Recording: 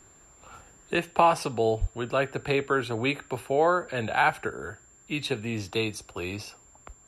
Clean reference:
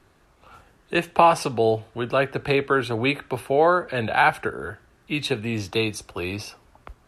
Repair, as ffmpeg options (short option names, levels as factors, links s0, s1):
-filter_complex "[0:a]bandreject=f=7300:w=30,asplit=3[s0][s1][s2];[s0]afade=t=out:st=1.8:d=0.02[s3];[s1]highpass=f=140:w=0.5412,highpass=f=140:w=1.3066,afade=t=in:st=1.8:d=0.02,afade=t=out:st=1.92:d=0.02[s4];[s2]afade=t=in:st=1.92:d=0.02[s5];[s3][s4][s5]amix=inputs=3:normalize=0,asetnsamples=n=441:p=0,asendcmd='0.95 volume volume 4.5dB',volume=1"